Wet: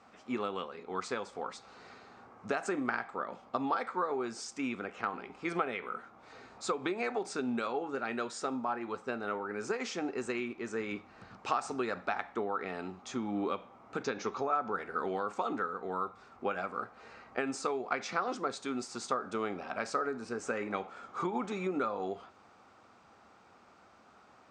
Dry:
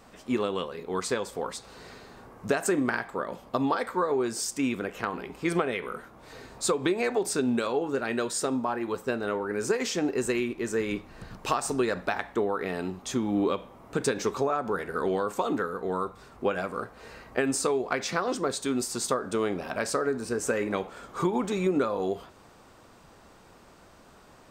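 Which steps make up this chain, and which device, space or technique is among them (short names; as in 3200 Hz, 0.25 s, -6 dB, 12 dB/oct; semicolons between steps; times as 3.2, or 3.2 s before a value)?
14.03–14.73 steep low-pass 6900 Hz 72 dB/oct; car door speaker (speaker cabinet 89–7100 Hz, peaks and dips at 150 Hz -6 dB, 220 Hz +3 dB, 780 Hz +7 dB, 1300 Hz +9 dB, 2300 Hz +5 dB); gain -9 dB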